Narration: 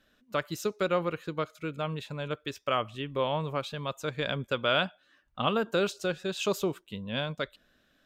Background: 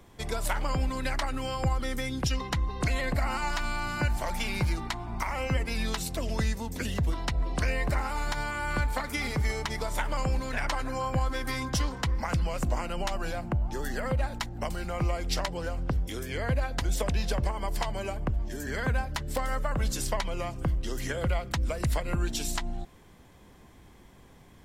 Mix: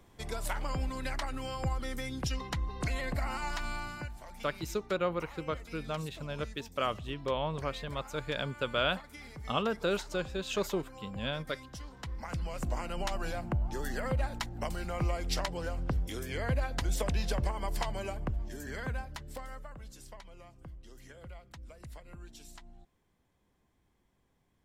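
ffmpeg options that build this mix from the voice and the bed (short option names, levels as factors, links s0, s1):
-filter_complex "[0:a]adelay=4100,volume=0.668[s0];[1:a]volume=2.66,afade=t=out:st=3.75:d=0.37:silence=0.266073,afade=t=in:st=11.84:d=1.25:silence=0.199526,afade=t=out:st=17.86:d=1.96:silence=0.141254[s1];[s0][s1]amix=inputs=2:normalize=0"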